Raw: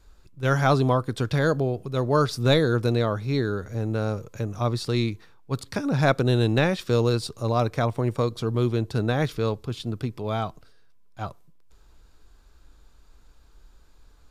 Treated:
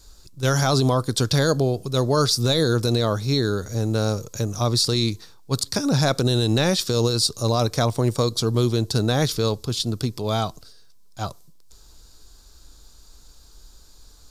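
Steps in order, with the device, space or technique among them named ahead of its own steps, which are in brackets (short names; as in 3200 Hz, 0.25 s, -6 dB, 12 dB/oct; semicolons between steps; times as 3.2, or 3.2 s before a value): over-bright horn tweeter (resonant high shelf 3400 Hz +11 dB, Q 1.5; limiter -14 dBFS, peak gain reduction 10.5 dB); gain +4 dB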